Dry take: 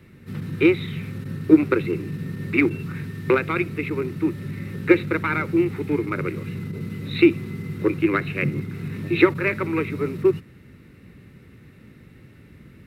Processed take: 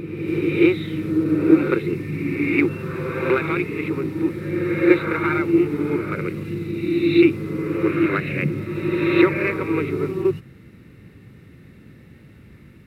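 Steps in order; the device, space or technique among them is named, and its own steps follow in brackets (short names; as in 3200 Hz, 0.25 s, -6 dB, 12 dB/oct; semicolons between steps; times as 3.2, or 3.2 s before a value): reverse reverb (reverse; reverb RT60 2.1 s, pre-delay 19 ms, DRR 1 dB; reverse); gain -1.5 dB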